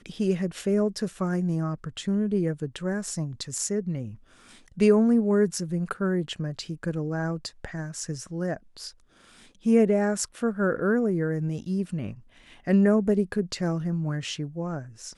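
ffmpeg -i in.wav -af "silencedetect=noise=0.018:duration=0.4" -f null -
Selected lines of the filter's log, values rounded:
silence_start: 4.12
silence_end: 4.78 | silence_duration: 0.66
silence_start: 8.89
silence_end: 9.66 | silence_duration: 0.76
silence_start: 12.13
silence_end: 12.67 | silence_duration: 0.54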